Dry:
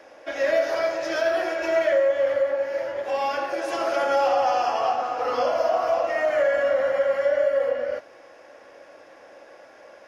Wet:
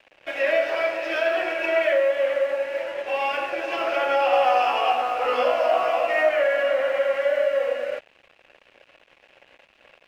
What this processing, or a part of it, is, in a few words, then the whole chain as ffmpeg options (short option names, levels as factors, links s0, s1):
pocket radio on a weak battery: -filter_complex "[0:a]highpass=270,lowpass=3400,aeval=exprs='sgn(val(0))*max(abs(val(0))-0.00473,0)':c=same,equalizer=f=2600:t=o:w=0.59:g=12,asettb=1/sr,asplit=3[s0][s1][s2];[s0]atrim=end=4.314[s3];[s1]atrim=start=4.31:end=6.29,asetpts=PTS-STARTPTS,afade=t=in:d=0.004:c=qsin,afade=t=out:st=1.976:d=0.004:c=qsin,asplit=2[s4][s5];[s5]adelay=16,volume=0.708[s6];[s4][s6]amix=inputs=2:normalize=0,atrim=end_sample=87318[s7];[s2]atrim=start=6.286[s8];[s3][s7]acrossfade=d=0.004:c1=hsin:c2=qsin[s9];[s9][s8]acrossfade=d=0.004:c1=qsin:c2=hsin"